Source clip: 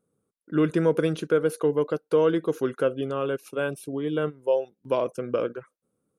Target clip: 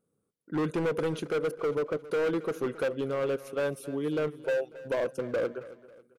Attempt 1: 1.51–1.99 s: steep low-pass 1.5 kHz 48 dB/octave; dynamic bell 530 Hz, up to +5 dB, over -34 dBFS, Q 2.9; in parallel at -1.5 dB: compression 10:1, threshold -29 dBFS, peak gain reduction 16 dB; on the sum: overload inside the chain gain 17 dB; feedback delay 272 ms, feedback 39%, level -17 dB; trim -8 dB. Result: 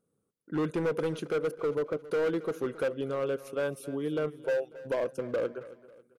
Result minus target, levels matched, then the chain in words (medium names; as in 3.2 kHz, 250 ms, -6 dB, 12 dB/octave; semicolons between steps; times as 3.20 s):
compression: peak gain reduction +9.5 dB
1.51–1.99 s: steep low-pass 1.5 kHz 48 dB/octave; dynamic bell 530 Hz, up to +5 dB, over -34 dBFS, Q 2.9; in parallel at -1.5 dB: compression 10:1, threshold -18.5 dBFS, peak gain reduction 6.5 dB; on the sum: overload inside the chain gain 17 dB; feedback delay 272 ms, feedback 39%, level -17 dB; trim -8 dB